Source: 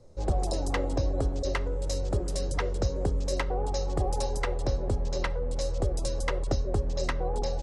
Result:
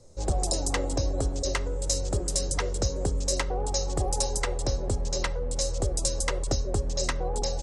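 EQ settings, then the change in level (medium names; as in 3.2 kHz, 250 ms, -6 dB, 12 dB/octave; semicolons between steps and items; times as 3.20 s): peaking EQ 7.7 kHz +13.5 dB 1.4 oct; 0.0 dB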